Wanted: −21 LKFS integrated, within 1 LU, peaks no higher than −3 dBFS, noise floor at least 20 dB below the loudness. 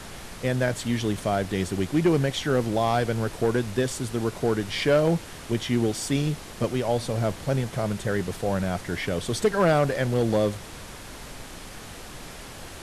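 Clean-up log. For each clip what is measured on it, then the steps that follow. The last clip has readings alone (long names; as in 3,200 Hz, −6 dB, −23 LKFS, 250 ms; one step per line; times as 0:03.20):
share of clipped samples 0.5%; peaks flattened at −14.0 dBFS; background noise floor −41 dBFS; target noise floor −46 dBFS; integrated loudness −25.5 LKFS; sample peak −14.0 dBFS; target loudness −21.0 LKFS
→ clipped peaks rebuilt −14 dBFS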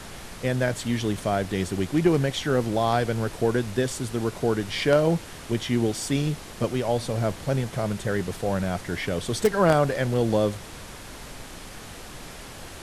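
share of clipped samples 0.0%; background noise floor −41 dBFS; target noise floor −46 dBFS
→ noise reduction from a noise print 6 dB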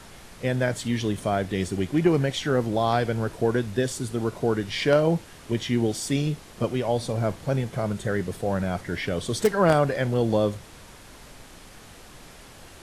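background noise floor −47 dBFS; integrated loudness −25.5 LKFS; sample peak −5.0 dBFS; target loudness −21.0 LKFS
→ level +4.5 dB
brickwall limiter −3 dBFS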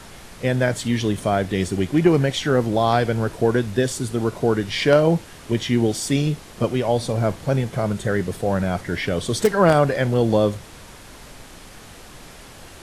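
integrated loudness −21.0 LKFS; sample peak −3.0 dBFS; background noise floor −42 dBFS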